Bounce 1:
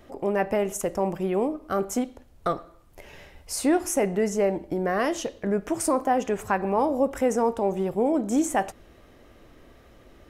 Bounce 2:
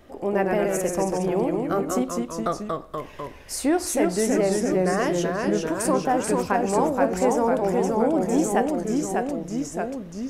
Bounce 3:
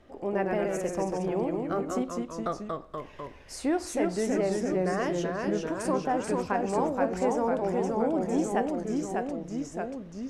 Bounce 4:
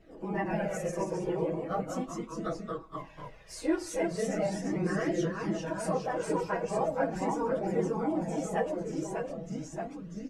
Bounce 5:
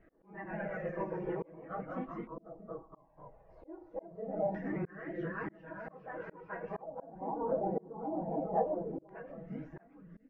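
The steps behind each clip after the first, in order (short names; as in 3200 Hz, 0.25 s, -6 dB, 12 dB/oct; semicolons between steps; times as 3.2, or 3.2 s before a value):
echoes that change speed 88 ms, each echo -1 st, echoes 3
air absorption 55 m; gain -5.5 dB
phase scrambler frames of 50 ms; comb 6.2 ms, depth 54%; flange 0.39 Hz, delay 0.4 ms, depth 1.8 ms, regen -31%
auto swell 0.552 s; air absorption 180 m; LFO low-pass square 0.22 Hz 790–1800 Hz; gain -5 dB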